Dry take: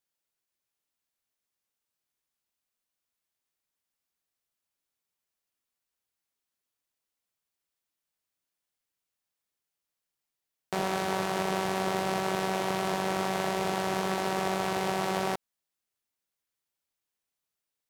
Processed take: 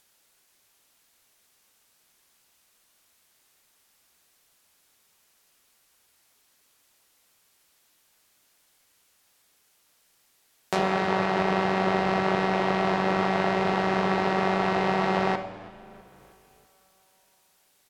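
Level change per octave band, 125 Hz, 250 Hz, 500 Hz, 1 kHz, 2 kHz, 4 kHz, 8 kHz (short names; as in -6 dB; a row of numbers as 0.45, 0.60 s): +6.5, +6.5, +5.0, +5.0, +6.0, +1.0, -7.5 dB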